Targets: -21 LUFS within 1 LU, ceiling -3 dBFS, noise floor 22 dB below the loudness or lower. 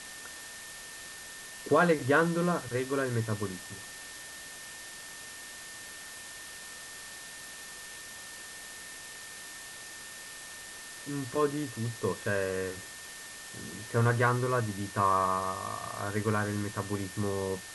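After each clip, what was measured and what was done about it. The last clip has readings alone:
steady tone 1800 Hz; tone level -48 dBFS; noise floor -45 dBFS; noise floor target -56 dBFS; loudness -33.5 LUFS; peak -12.5 dBFS; loudness target -21.0 LUFS
-> notch 1800 Hz, Q 30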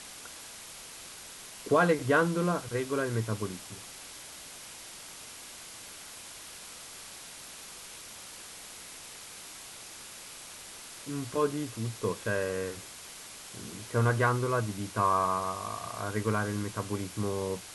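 steady tone none; noise floor -47 dBFS; noise floor target -56 dBFS
-> denoiser 9 dB, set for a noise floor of -47 dBFS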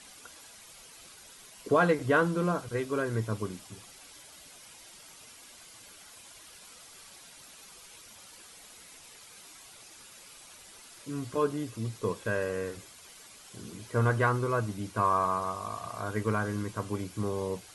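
noise floor -52 dBFS; noise floor target -53 dBFS
-> denoiser 6 dB, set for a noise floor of -52 dBFS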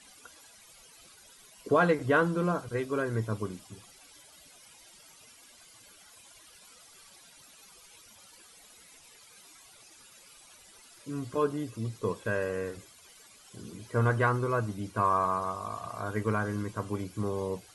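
noise floor -56 dBFS; loudness -30.5 LUFS; peak -13.0 dBFS; loudness target -21.0 LUFS
-> gain +9.5 dB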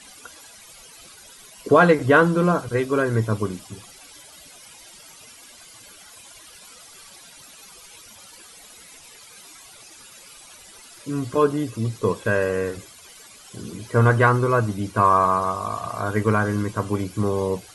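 loudness -21.0 LUFS; peak -3.5 dBFS; noise floor -47 dBFS

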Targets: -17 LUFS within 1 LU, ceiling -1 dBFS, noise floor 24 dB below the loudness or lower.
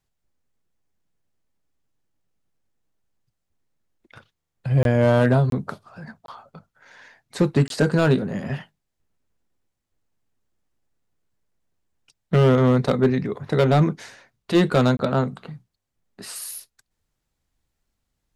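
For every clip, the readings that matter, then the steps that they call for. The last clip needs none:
clipped 0.7%; flat tops at -10.0 dBFS; dropouts 5; longest dropout 22 ms; loudness -20.5 LUFS; peak -10.0 dBFS; loudness target -17.0 LUFS
-> clip repair -10 dBFS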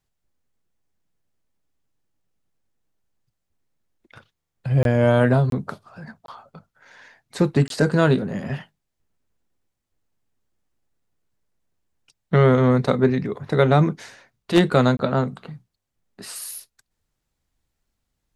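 clipped 0.0%; dropouts 5; longest dropout 22 ms
-> interpolate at 4.83/5.5/6.26/7.68/14.97, 22 ms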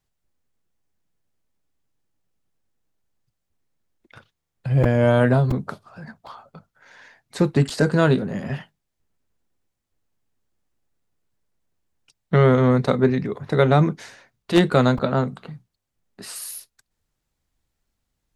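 dropouts 0; loudness -20.0 LUFS; peak -1.0 dBFS; loudness target -17.0 LUFS
-> gain +3 dB; limiter -1 dBFS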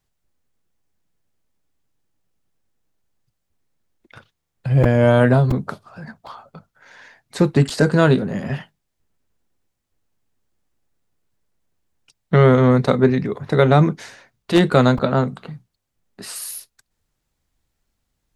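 loudness -17.0 LUFS; peak -1.0 dBFS; noise floor -76 dBFS

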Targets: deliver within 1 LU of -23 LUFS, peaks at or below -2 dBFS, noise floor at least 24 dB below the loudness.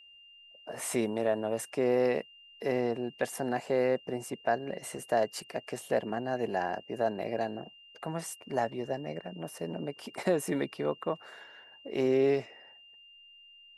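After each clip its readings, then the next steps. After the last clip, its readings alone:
steady tone 2800 Hz; tone level -53 dBFS; loudness -32.5 LUFS; peak -15.0 dBFS; loudness target -23.0 LUFS
-> notch 2800 Hz, Q 30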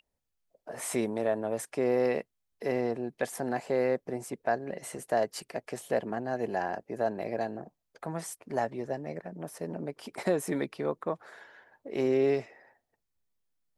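steady tone none; loudness -32.5 LUFS; peak -15.0 dBFS; loudness target -23.0 LUFS
-> gain +9.5 dB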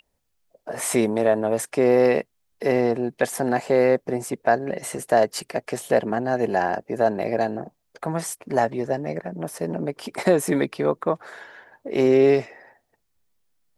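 loudness -23.0 LUFS; peak -5.5 dBFS; noise floor -73 dBFS

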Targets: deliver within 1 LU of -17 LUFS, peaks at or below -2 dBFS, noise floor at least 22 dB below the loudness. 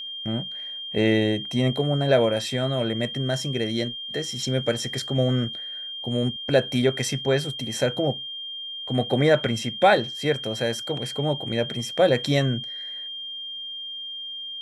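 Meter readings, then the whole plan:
steady tone 3200 Hz; tone level -32 dBFS; loudness -25.0 LUFS; peak -6.5 dBFS; loudness target -17.0 LUFS
-> notch 3200 Hz, Q 30; gain +8 dB; limiter -2 dBFS

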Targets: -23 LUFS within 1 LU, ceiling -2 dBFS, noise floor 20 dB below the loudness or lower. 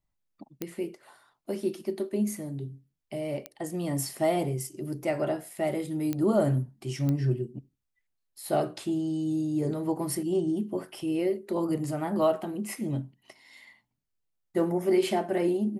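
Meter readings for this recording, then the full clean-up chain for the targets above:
clicks 4; loudness -29.5 LUFS; peak -13.0 dBFS; loudness target -23.0 LUFS
-> de-click; gain +6.5 dB

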